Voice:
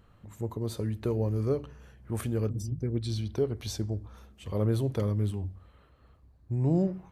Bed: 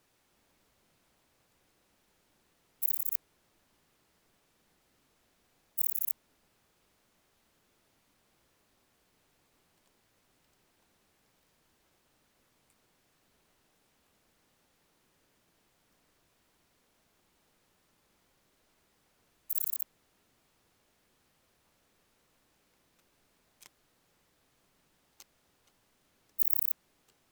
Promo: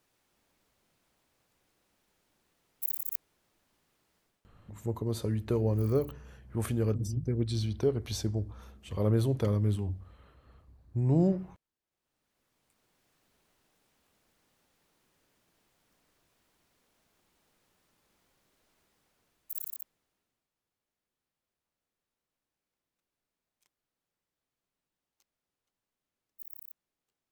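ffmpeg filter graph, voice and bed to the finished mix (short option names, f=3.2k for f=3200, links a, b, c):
-filter_complex "[0:a]adelay=4450,volume=0.5dB[a];[1:a]volume=17.5dB,afade=t=out:st=4.2:d=0.31:silence=0.112202,afade=t=in:st=11.87:d=1.19:silence=0.0944061,afade=t=out:st=18.8:d=1.68:silence=0.133352[b];[a][b]amix=inputs=2:normalize=0"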